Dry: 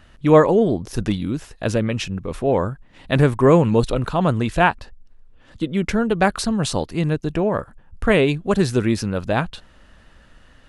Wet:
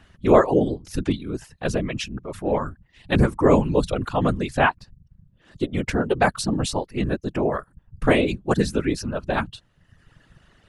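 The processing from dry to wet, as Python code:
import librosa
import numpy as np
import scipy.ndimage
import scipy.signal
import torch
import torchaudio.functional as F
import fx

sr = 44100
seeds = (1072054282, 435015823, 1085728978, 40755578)

y = fx.dereverb_blind(x, sr, rt60_s=0.96)
y = fx.transient(y, sr, attack_db=-5, sustain_db=1, at=(2.04, 2.59))
y = fx.whisperise(y, sr, seeds[0])
y = y * 10.0 ** (-2.0 / 20.0)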